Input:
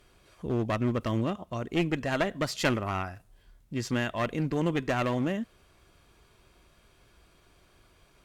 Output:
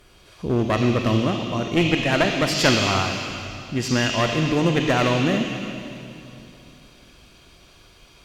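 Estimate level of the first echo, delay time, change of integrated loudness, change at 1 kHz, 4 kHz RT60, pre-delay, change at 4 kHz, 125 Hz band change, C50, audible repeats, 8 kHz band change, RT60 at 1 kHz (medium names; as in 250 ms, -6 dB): no echo, no echo, +9.0 dB, +8.5 dB, 2.5 s, 30 ms, +15.0 dB, +8.5 dB, 1.0 dB, no echo, +13.0 dB, 2.7 s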